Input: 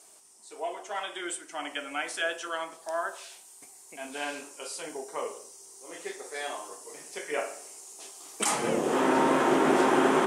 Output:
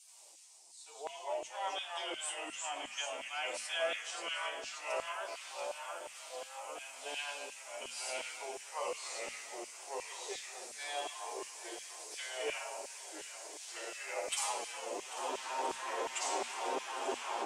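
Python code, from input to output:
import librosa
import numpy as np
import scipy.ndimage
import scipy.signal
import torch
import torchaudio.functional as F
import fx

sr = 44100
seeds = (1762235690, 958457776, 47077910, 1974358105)

p1 = fx.weighting(x, sr, curve='A')
p2 = p1 + fx.echo_single(p1, sr, ms=137, db=-16.5, dry=0)
p3 = fx.rider(p2, sr, range_db=4, speed_s=2.0)
p4 = fx.stretch_vocoder(p3, sr, factor=1.7)
p5 = fx.band_shelf(p4, sr, hz=1600.0, db=-8.5, octaves=1.0)
p6 = fx.echo_swing(p5, sr, ms=1321, ratio=1.5, feedback_pct=59, wet_db=-14.5)
p7 = fx.echo_pitch(p6, sr, ms=81, semitones=-2, count=2, db_per_echo=-3.0)
p8 = fx.filter_lfo_highpass(p7, sr, shape='saw_down', hz=2.8, low_hz=320.0, high_hz=2500.0, q=1.1)
p9 = fx.hum_notches(p8, sr, base_hz=60, count=4)
y = p9 * 10.0 ** (-7.0 / 20.0)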